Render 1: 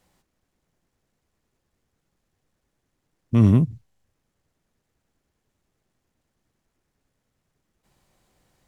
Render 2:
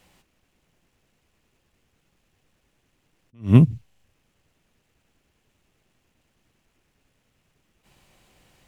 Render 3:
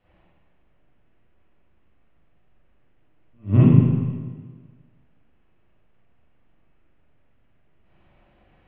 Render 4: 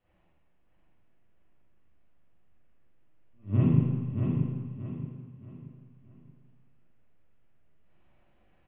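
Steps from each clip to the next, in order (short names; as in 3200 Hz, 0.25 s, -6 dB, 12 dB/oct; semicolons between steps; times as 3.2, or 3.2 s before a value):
bell 2700 Hz +8 dB 0.66 oct; attack slew limiter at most 230 dB/s; gain +6 dB
air absorption 460 m; reverb RT60 1.5 s, pre-delay 38 ms, DRR -11 dB; gain -8 dB
flange 0.87 Hz, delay 7.6 ms, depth 9.4 ms, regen +78%; on a send: feedback echo 0.628 s, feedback 35%, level -5 dB; on the sum: gain -5 dB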